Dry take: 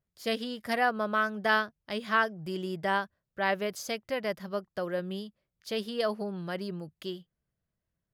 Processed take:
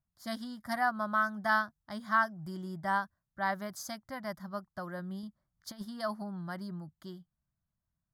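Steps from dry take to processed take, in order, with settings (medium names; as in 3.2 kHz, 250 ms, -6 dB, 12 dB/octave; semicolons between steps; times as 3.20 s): 5.23–5.85 s: compressor with a negative ratio -35 dBFS, ratio -0.5; static phaser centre 1.1 kHz, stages 4; tape noise reduction on one side only decoder only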